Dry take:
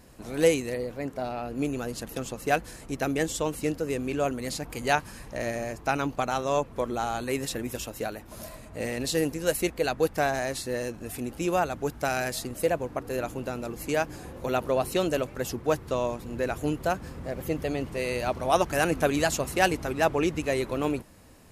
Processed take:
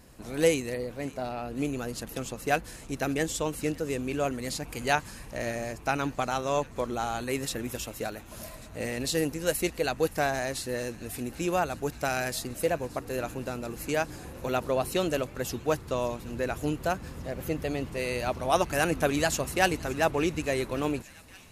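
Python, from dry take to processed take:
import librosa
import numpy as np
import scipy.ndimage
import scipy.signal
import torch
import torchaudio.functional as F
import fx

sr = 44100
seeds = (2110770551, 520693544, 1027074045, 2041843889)

y = fx.peak_eq(x, sr, hz=510.0, db=-2.0, octaves=2.8)
y = fx.echo_wet_highpass(y, sr, ms=571, feedback_pct=77, hz=1900.0, wet_db=-19)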